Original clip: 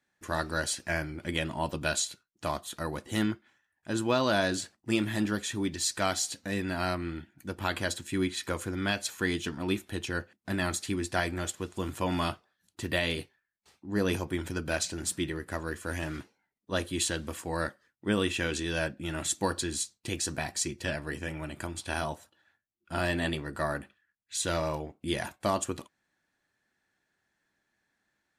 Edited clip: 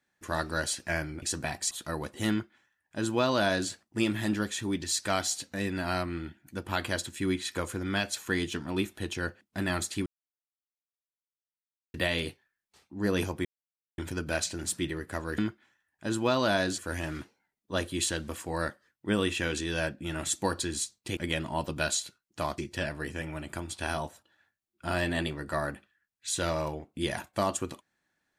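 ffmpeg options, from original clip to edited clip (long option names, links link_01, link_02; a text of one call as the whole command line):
ffmpeg -i in.wav -filter_complex "[0:a]asplit=10[link_01][link_02][link_03][link_04][link_05][link_06][link_07][link_08][link_09][link_10];[link_01]atrim=end=1.222[link_11];[link_02]atrim=start=20.158:end=20.652[link_12];[link_03]atrim=start=2.628:end=10.98,asetpts=PTS-STARTPTS,afade=type=out:start_time=8.348:duration=0.004:curve=hsin[link_13];[link_04]atrim=start=10.98:end=12.86,asetpts=PTS-STARTPTS,volume=0[link_14];[link_05]atrim=start=12.86:end=14.37,asetpts=PTS-STARTPTS,afade=type=in:duration=0.004:curve=hsin,afade=type=out:start_time=1.506:duration=0.004:curve=hsin,apad=pad_dur=0.53[link_15];[link_06]atrim=start=14.37:end=15.772,asetpts=PTS-STARTPTS,afade=type=in:duration=0.004:curve=hsin[link_16];[link_07]atrim=start=3.218:end=4.622[link_17];[link_08]atrim=start=15.768:end=20.162[link_18];[link_09]atrim=start=1.218:end=2.632[link_19];[link_10]atrim=start=20.648[link_20];[link_11][link_12]acrossfade=duration=0.004:curve1=hsin:curve2=hsin[link_21];[link_13][link_14][link_15][link_16]concat=n=4:v=0:a=1[link_22];[link_21][link_22]acrossfade=duration=0.004:curve1=hsin:curve2=hsin[link_23];[link_23][link_17]acrossfade=duration=0.004:curve1=hsin:curve2=hsin[link_24];[link_24][link_18]acrossfade=duration=0.004:curve1=hsin:curve2=hsin[link_25];[link_25][link_19]acrossfade=duration=0.004:curve1=hsin:curve2=hsin[link_26];[link_26][link_20]acrossfade=duration=0.004:curve1=hsin:curve2=hsin" out.wav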